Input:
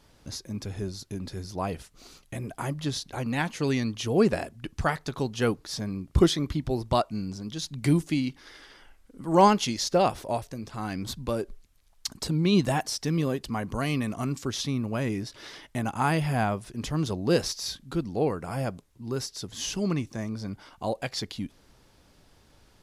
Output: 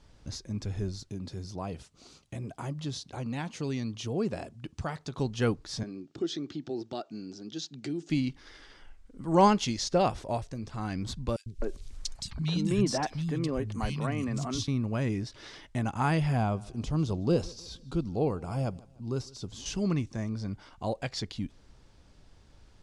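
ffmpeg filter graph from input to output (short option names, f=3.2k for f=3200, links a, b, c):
-filter_complex "[0:a]asettb=1/sr,asplit=3[a][b][c];[a]atrim=end=1.094[d];[b]atrim=start=1.09:end=5.19,asetpts=PTS-STARTPTS,afade=t=in:d=0.004:c=qsin,afade=t=out:st=4.096:d=0.004:c=qsin,equalizer=f=1.8k:t=o:w=0.74:g=-4.5,acompressor=threshold=-35dB:ratio=1.5:attack=3.2:release=140:knee=1:detection=peak,highpass=94[e];[c]atrim=start=5.186[f];[d][e]acrossfade=d=0.004:c1=hsin:c2=qsin[g];[g][f]acrossfade=d=0.004:c1=qsin:c2=hsin,asettb=1/sr,asplit=3[h][i][j];[h]atrim=end=5.834[k];[i]atrim=start=5.83:end=8.1,asetpts=PTS-STARTPTS,afade=t=in:d=0.004:c=qsin,afade=t=out:st=2.266:d=0.004:c=qsin,bandreject=f=1k:w=5.1,acompressor=threshold=-28dB:ratio=4:attack=3.2:release=140:knee=1:detection=peak,highpass=f=180:w=0.5412,highpass=f=180:w=1.3066,equalizer=f=190:t=q:w=4:g=-9,equalizer=f=350:t=q:w=4:g=6,equalizer=f=560:t=q:w=4:g=-4,equalizer=f=1.1k:t=q:w=4:g=-6,equalizer=f=2.1k:t=q:w=4:g=-7,lowpass=f=7k:w=0.5412,lowpass=f=7k:w=1.3066[l];[j]atrim=start=8.096[m];[k][l]acrossfade=d=0.004:c1=hsin:c2=qsin[n];[n][m]acrossfade=d=0.004:c1=qsin:c2=hsin,asettb=1/sr,asplit=3[o][p][q];[o]atrim=end=11.364[r];[p]atrim=start=11.36:end=14.68,asetpts=PTS-STARTPTS,afade=t=in:d=0.004:c=qsin,afade=t=out:st=3.316:d=0.004:c=qsin,acompressor=mode=upward:threshold=-28dB:ratio=2.5:attack=3.2:release=140:knee=2.83:detection=peak,acrossover=split=180|2500[s][t][u];[s]adelay=100[v];[t]adelay=260[w];[v][w][u]amix=inputs=3:normalize=0,atrim=end_sample=146412[x];[q]atrim=start=14.676[y];[r][x]acrossfade=d=0.004:c1=hsin:c2=qsin[z];[z][y]acrossfade=d=0.004:c1=qsin:c2=hsin,asettb=1/sr,asplit=3[aa][ab][ac];[aa]atrim=end=16.374[ad];[ab]atrim=start=16.37:end=19.66,asetpts=PTS-STARTPTS,afade=t=in:d=0.004:c=qsin,afade=t=out:st=3.286:d=0.004:c=qsin,deesser=0.9,equalizer=f=1.8k:t=o:w=0.49:g=-10.5,aecho=1:1:153|306|459:0.0708|0.0297|0.0125,atrim=end_sample=145089[ae];[ac]atrim=start=19.656[af];[ad][ae]acrossfade=d=0.004:c1=hsin:c2=qsin[ag];[ag][af]acrossfade=d=0.004:c1=qsin:c2=hsin,lowpass=f=8.8k:w=0.5412,lowpass=f=8.8k:w=1.3066,lowshelf=f=120:g=9.5,volume=-3.5dB"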